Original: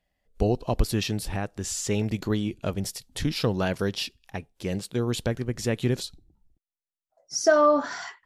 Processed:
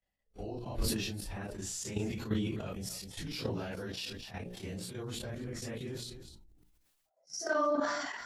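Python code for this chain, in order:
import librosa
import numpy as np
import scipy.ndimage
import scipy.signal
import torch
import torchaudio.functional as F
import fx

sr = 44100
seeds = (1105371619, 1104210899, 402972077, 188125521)

y = fx.phase_scramble(x, sr, seeds[0], window_ms=100)
y = fx.hum_notches(y, sr, base_hz=60, count=10)
y = fx.level_steps(y, sr, step_db=11)
y = y + 10.0 ** (-23.0 / 20.0) * np.pad(y, (int(254 * sr / 1000.0), 0))[:len(y)]
y = fx.sustainer(y, sr, db_per_s=35.0)
y = y * librosa.db_to_amplitude(-7.0)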